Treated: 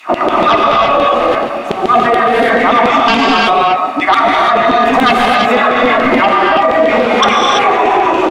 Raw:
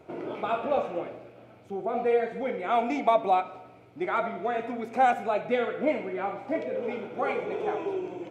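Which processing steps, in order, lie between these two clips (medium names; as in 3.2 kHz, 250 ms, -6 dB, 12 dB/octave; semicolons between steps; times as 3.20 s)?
comb 1.1 ms, depth 60%; in parallel at +1.5 dB: compression, threshold -36 dBFS, peak gain reduction 19.5 dB; on the sum: small resonant body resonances 230/1200 Hz, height 17 dB, ringing for 30 ms; LFO high-pass saw down 7 Hz 430–3300 Hz; sine folder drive 4 dB, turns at -7.5 dBFS; gated-style reverb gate 360 ms rising, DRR -3 dB; loudness maximiser +9.5 dB; trim -1 dB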